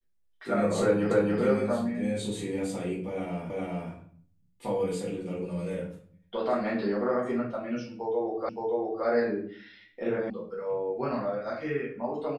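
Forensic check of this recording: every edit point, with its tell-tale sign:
1.11 s: repeat of the last 0.28 s
3.50 s: repeat of the last 0.41 s
8.49 s: repeat of the last 0.57 s
10.30 s: sound stops dead

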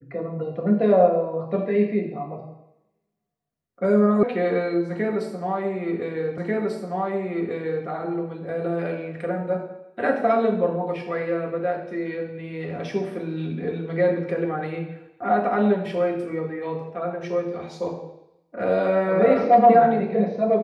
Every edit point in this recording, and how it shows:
4.23 s: sound stops dead
6.38 s: repeat of the last 1.49 s

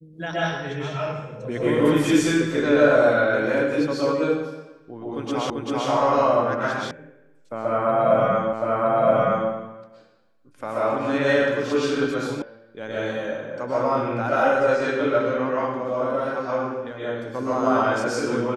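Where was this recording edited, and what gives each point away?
5.50 s: repeat of the last 0.39 s
6.91 s: sound stops dead
8.53 s: repeat of the last 0.97 s
12.42 s: sound stops dead

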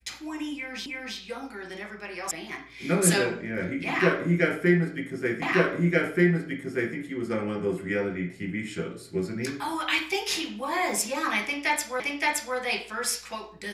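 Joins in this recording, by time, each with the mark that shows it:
0.86 s: repeat of the last 0.32 s
2.31 s: sound stops dead
5.42 s: repeat of the last 1.53 s
12.00 s: repeat of the last 0.57 s

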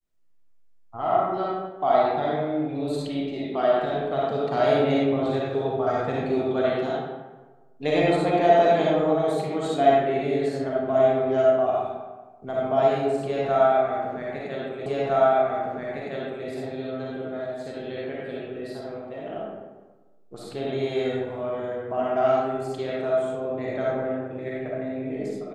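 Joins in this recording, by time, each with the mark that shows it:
14.86 s: repeat of the last 1.61 s

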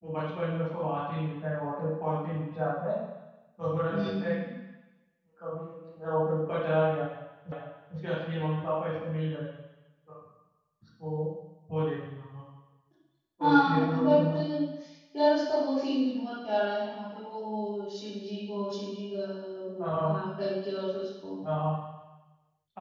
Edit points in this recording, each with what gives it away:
7.52 s: repeat of the last 0.45 s

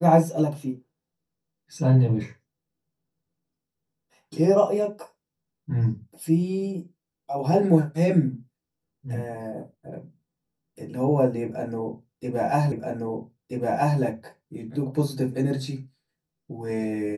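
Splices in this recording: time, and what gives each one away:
12.72 s: repeat of the last 1.28 s

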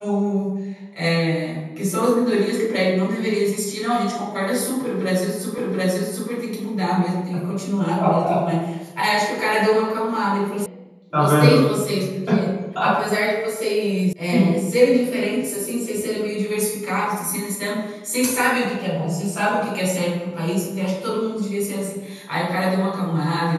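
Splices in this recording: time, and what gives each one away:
5.58 s: repeat of the last 0.73 s
10.66 s: sound stops dead
14.13 s: sound stops dead

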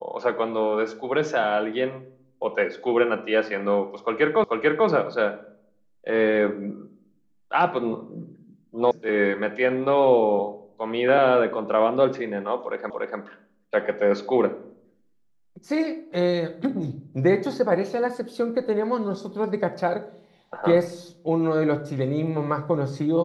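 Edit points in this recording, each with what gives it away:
4.44 s: repeat of the last 0.44 s
8.91 s: sound stops dead
12.90 s: repeat of the last 0.29 s

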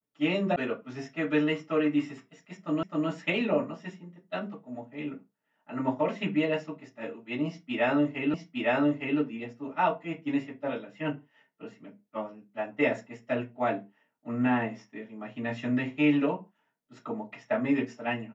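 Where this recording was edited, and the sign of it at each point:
0.56 s: sound stops dead
2.83 s: repeat of the last 0.26 s
8.34 s: repeat of the last 0.86 s

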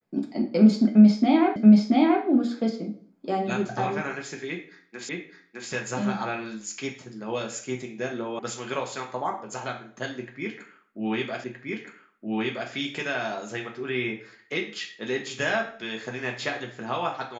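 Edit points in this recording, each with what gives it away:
1.56 s: repeat of the last 0.68 s
5.09 s: repeat of the last 0.61 s
8.39 s: sound stops dead
11.44 s: repeat of the last 1.27 s

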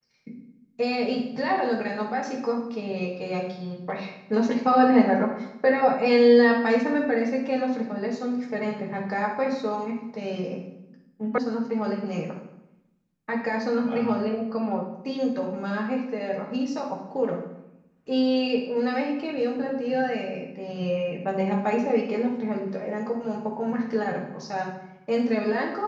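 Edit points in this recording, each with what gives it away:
11.38 s: sound stops dead

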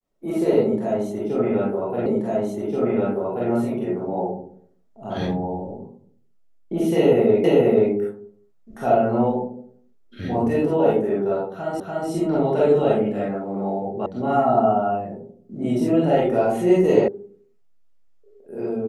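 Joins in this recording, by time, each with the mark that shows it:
2.06 s: repeat of the last 1.43 s
7.44 s: repeat of the last 0.48 s
11.80 s: repeat of the last 0.29 s
14.06 s: sound stops dead
17.08 s: sound stops dead

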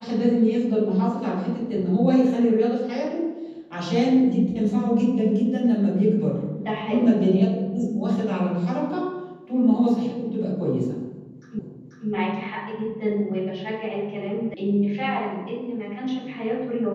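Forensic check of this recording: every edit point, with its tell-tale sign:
11.59 s: repeat of the last 0.49 s
14.54 s: sound stops dead

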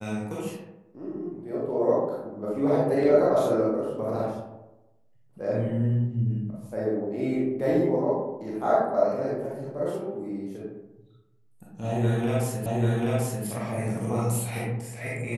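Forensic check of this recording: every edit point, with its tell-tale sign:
12.66 s: repeat of the last 0.79 s

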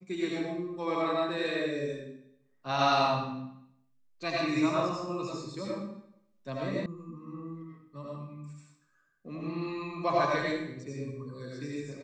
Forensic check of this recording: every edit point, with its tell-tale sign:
6.86 s: sound stops dead

